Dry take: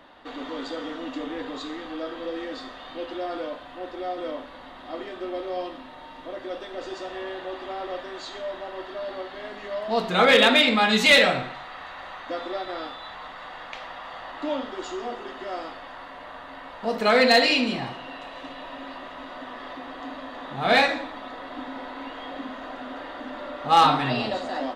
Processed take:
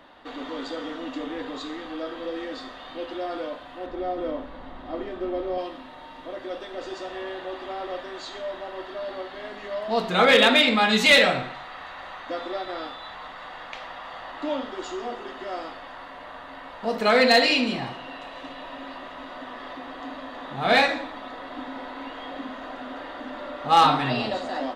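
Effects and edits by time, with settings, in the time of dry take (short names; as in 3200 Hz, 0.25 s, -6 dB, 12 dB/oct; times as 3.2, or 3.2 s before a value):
3.86–5.58 tilt -2.5 dB/oct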